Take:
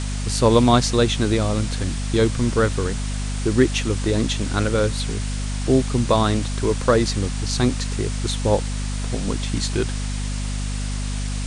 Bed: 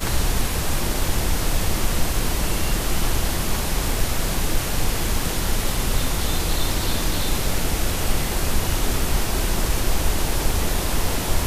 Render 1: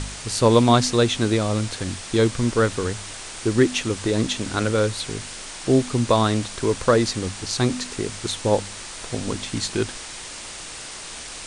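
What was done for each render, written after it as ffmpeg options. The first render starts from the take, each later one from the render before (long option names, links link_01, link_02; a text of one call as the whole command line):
ffmpeg -i in.wav -af "bandreject=frequency=50:width_type=h:width=4,bandreject=frequency=100:width_type=h:width=4,bandreject=frequency=150:width_type=h:width=4,bandreject=frequency=200:width_type=h:width=4,bandreject=frequency=250:width_type=h:width=4" out.wav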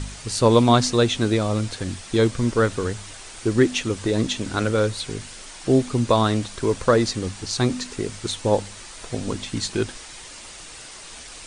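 ffmpeg -i in.wav -af "afftdn=noise_reduction=6:noise_floor=-36" out.wav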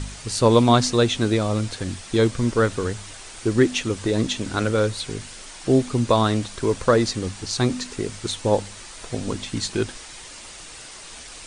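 ffmpeg -i in.wav -af anull out.wav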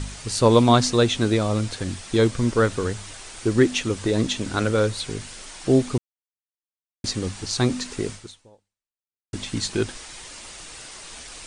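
ffmpeg -i in.wav -filter_complex "[0:a]asplit=4[link_01][link_02][link_03][link_04];[link_01]atrim=end=5.98,asetpts=PTS-STARTPTS,afade=type=out:start_time=5.976:duration=0.004:curve=hsin[link_05];[link_02]atrim=start=5.98:end=7.04,asetpts=PTS-STARTPTS,volume=0[link_06];[link_03]atrim=start=7.04:end=9.33,asetpts=PTS-STARTPTS,afade=type=in:duration=0.004:curve=hsin,afade=type=out:start_time=1.07:duration=1.22:curve=exp[link_07];[link_04]atrim=start=9.33,asetpts=PTS-STARTPTS,afade=type=in:duration=0.004:curve=hsin[link_08];[link_05][link_06][link_07][link_08]concat=n=4:v=0:a=1" out.wav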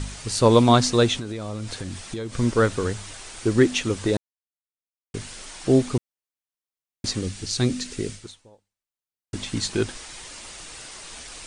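ffmpeg -i in.wav -filter_complex "[0:a]asettb=1/sr,asplit=3[link_01][link_02][link_03];[link_01]atrim=end=1.184[link_04];[link_02]atrim=start=1.18:end=2.34,asetpts=PTS-STARTPTS,afade=type=in:duration=0.004:curve=qsin,afade=type=out:start_time=1.156:duration=0.004:curve=qsin,acompressor=threshold=-27dB:ratio=12:attack=3.2:release=140:knee=1:detection=peak[link_05];[link_03]atrim=start=2.336[link_06];[link_04][link_05]acrossfade=duration=0.004:curve1=hsin:curve2=qsin[link_07];[link_07][link_06]acrossfade=duration=0.004:curve1=qsin:curve2=hsin,asettb=1/sr,asplit=3[link_08][link_09][link_10];[link_08]atrim=end=7.214[link_11];[link_09]atrim=start=7.21:end=8.23,asetpts=PTS-STARTPTS,afade=type=in:duration=0.004:curve=qsin,afade=type=out:start_time=1.016:duration=0.004:curve=qsin,equalizer=frequency=950:width=1.1:gain=-10.5[link_12];[link_10]atrim=start=8.226[link_13];[link_11][link_12]acrossfade=duration=0.004:curve1=hsin:curve2=qsin[link_14];[link_14][link_13]acrossfade=duration=0.004:curve1=qsin:curve2=hsin,asplit=3[link_15][link_16][link_17];[link_15]atrim=end=4.17,asetpts=PTS-STARTPTS,afade=type=out:start_time=4.166:duration=0.004:curve=hsin[link_18];[link_16]atrim=start=4.17:end=5.14,asetpts=PTS-STARTPTS,volume=0[link_19];[link_17]atrim=start=5.14,asetpts=PTS-STARTPTS,afade=type=in:duration=0.004:curve=hsin[link_20];[link_18][link_19][link_20]concat=n=3:v=0:a=1" out.wav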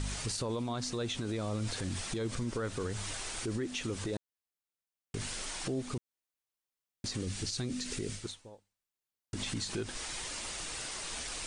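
ffmpeg -i in.wav -af "acompressor=threshold=-27dB:ratio=6,alimiter=level_in=3dB:limit=-24dB:level=0:latency=1:release=53,volume=-3dB" out.wav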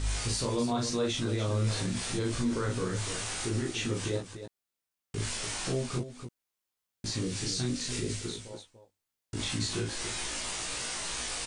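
ffmpeg -i in.wav -filter_complex "[0:a]asplit=2[link_01][link_02];[link_02]adelay=17,volume=-2.5dB[link_03];[link_01][link_03]amix=inputs=2:normalize=0,aecho=1:1:37.9|291.5:0.794|0.398" out.wav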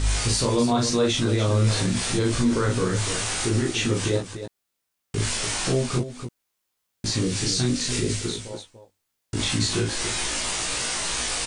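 ffmpeg -i in.wav -af "volume=8.5dB" out.wav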